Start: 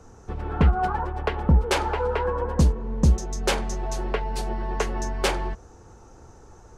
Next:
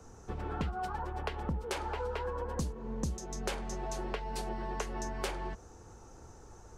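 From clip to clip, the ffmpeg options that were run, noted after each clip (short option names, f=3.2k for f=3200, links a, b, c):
-filter_complex "[0:a]highshelf=f=5.5k:g=5.5,acrossover=split=91|3400[a][b][c];[a]acompressor=threshold=-37dB:ratio=4[d];[b]acompressor=threshold=-31dB:ratio=4[e];[c]acompressor=threshold=-41dB:ratio=4[f];[d][e][f]amix=inputs=3:normalize=0,volume=-4.5dB"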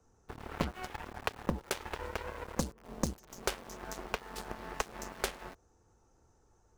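-filter_complex "[0:a]asplit=2[a][b];[b]acrusher=bits=5:mix=0:aa=0.000001,volume=-10dB[c];[a][c]amix=inputs=2:normalize=0,aeval=exprs='0.158*(cos(1*acos(clip(val(0)/0.158,-1,1)))-cos(1*PI/2))+0.0126*(cos(3*acos(clip(val(0)/0.158,-1,1)))-cos(3*PI/2))+0.02*(cos(7*acos(clip(val(0)/0.158,-1,1)))-cos(7*PI/2))':c=same,volume=3.5dB"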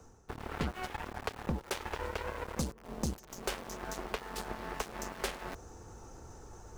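-af "areverse,acompressor=mode=upward:threshold=-39dB:ratio=2.5,areverse,volume=26dB,asoftclip=hard,volume=-26dB,volume=3dB"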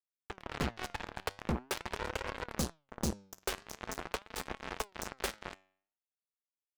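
-af "acrusher=bits=4:mix=0:aa=0.5,flanger=delay=3.6:depth=7:regen=88:speed=0.44:shape=sinusoidal,volume=4.5dB"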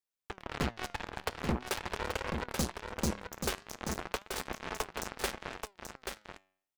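-af "aecho=1:1:832:0.501,volume=1.5dB"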